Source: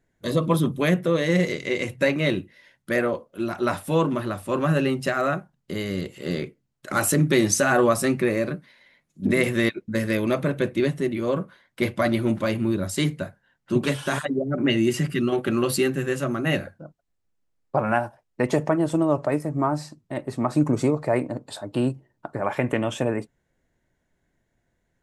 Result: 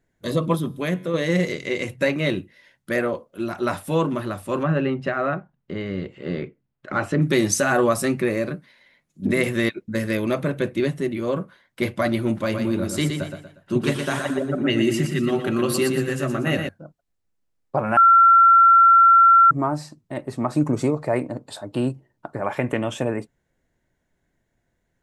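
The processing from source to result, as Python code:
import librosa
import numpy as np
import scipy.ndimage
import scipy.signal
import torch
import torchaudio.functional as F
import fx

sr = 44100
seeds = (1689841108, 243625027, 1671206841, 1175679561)

y = fx.comb_fb(x, sr, f0_hz=92.0, decay_s=1.2, harmonics='all', damping=0.0, mix_pct=40, at=(0.55, 1.14))
y = fx.lowpass(y, sr, hz=2500.0, slope=12, at=(4.63, 7.22))
y = fx.echo_feedback(y, sr, ms=119, feedback_pct=37, wet_db=-6.0, at=(12.39, 16.69))
y = fx.edit(y, sr, fx.bleep(start_s=17.97, length_s=1.54, hz=1360.0, db=-9.0), tone=tone)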